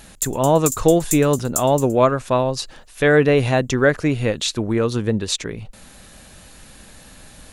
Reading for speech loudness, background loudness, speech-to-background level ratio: -18.5 LUFS, -26.5 LUFS, 8.0 dB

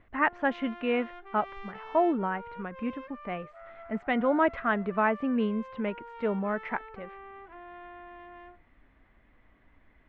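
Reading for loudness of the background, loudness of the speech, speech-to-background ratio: -46.5 LUFS, -30.0 LUFS, 16.5 dB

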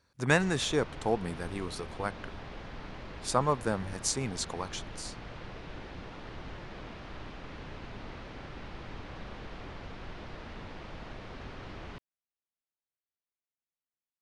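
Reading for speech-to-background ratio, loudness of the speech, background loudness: 13.0 dB, -32.0 LUFS, -45.0 LUFS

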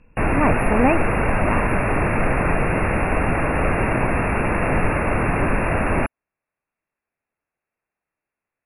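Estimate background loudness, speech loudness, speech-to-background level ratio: -21.0 LUFS, -23.0 LUFS, -2.0 dB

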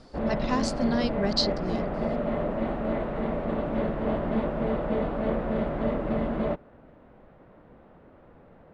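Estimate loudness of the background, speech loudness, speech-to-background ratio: -29.0 LUFS, -29.5 LUFS, -0.5 dB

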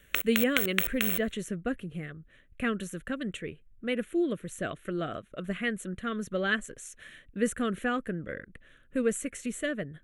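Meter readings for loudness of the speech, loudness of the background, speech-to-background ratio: -32.5 LUFS, -29.0 LUFS, -3.5 dB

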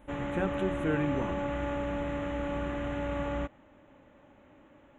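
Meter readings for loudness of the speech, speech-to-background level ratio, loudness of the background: -34.0 LUFS, 0.0 dB, -34.0 LUFS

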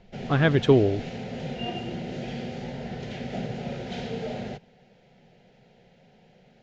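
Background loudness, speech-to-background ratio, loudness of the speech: -34.5 LUFS, 12.5 dB, -22.0 LUFS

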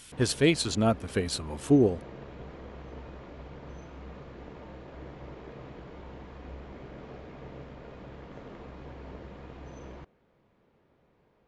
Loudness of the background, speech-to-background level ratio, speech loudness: -46.0 LUFS, 19.5 dB, -26.5 LUFS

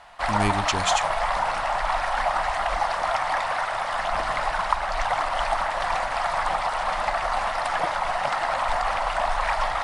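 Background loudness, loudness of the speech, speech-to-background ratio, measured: -25.0 LUFS, -27.5 LUFS, -2.5 dB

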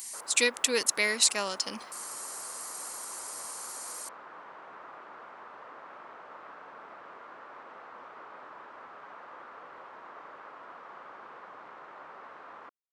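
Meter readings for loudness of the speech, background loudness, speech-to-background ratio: -29.5 LUFS, -47.5 LUFS, 18.0 dB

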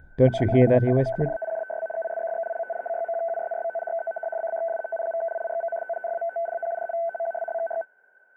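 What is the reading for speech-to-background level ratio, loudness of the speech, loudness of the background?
8.5 dB, -21.5 LUFS, -30.0 LUFS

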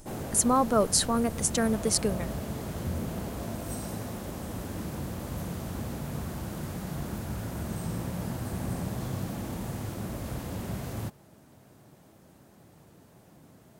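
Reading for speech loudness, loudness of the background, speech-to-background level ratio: -25.5 LUFS, -36.0 LUFS, 10.5 dB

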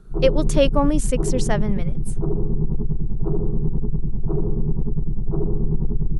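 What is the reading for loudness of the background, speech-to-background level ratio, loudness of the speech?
-26.0 LUFS, 3.0 dB, -23.0 LUFS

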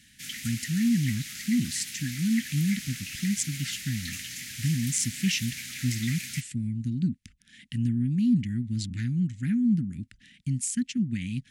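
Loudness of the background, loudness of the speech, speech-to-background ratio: -36.0 LUFS, -29.0 LUFS, 7.0 dB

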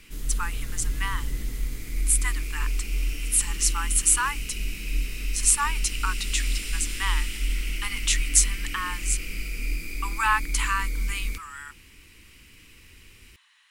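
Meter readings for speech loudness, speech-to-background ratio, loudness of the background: -26.0 LUFS, 5.5 dB, -31.5 LUFS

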